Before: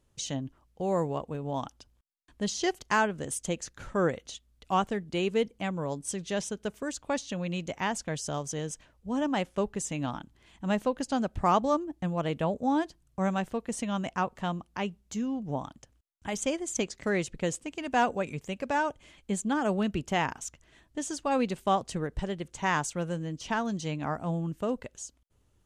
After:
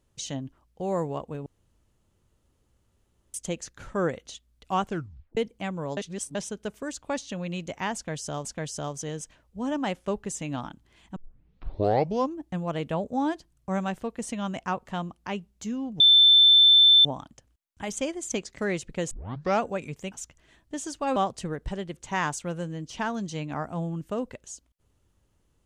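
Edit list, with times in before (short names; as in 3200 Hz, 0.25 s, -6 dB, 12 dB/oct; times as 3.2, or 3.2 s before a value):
1.46–3.34 room tone
4.88 tape stop 0.49 s
5.97–6.35 reverse
7.95–8.45 loop, 2 plays
10.66 tape start 1.22 s
15.5 add tone 3540 Hz -12.5 dBFS 1.05 s
17.56 tape start 0.51 s
18.57–20.36 cut
21.4–21.67 cut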